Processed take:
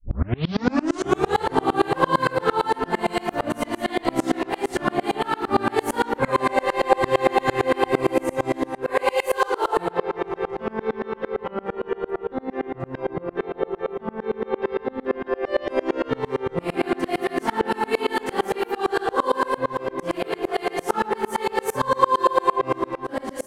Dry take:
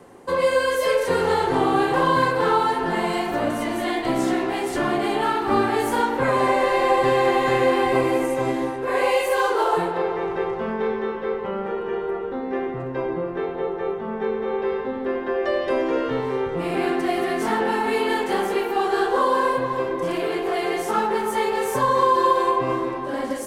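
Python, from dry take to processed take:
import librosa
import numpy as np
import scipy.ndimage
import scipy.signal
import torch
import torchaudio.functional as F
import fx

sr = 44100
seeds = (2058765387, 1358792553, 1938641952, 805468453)

y = fx.tape_start_head(x, sr, length_s=1.42)
y = fx.tremolo_decay(y, sr, direction='swelling', hz=8.8, depth_db=30)
y = F.gain(torch.from_numpy(y), 6.5).numpy()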